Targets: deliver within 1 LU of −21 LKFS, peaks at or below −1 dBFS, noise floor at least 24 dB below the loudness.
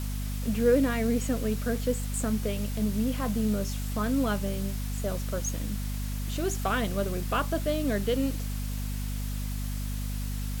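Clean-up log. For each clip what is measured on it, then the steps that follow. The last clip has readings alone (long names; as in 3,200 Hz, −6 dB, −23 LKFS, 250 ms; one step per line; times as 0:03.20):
mains hum 50 Hz; hum harmonics up to 250 Hz; level of the hum −30 dBFS; background noise floor −32 dBFS; target noise floor −54 dBFS; integrated loudness −30.0 LKFS; sample peak −11.5 dBFS; target loudness −21.0 LKFS
→ mains-hum notches 50/100/150/200/250 Hz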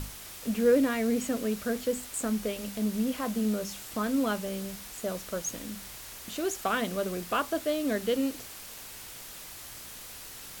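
mains hum none found; background noise floor −45 dBFS; target noise floor −55 dBFS
→ noise reduction from a noise print 10 dB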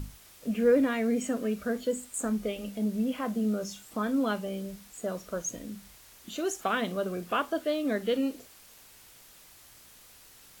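background noise floor −55 dBFS; integrated loudness −30.5 LKFS; sample peak −13.5 dBFS; target loudness −21.0 LKFS
→ level +9.5 dB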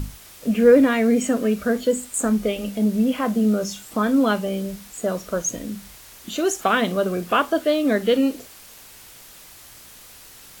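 integrated loudness −21.0 LKFS; sample peak −4.0 dBFS; background noise floor −45 dBFS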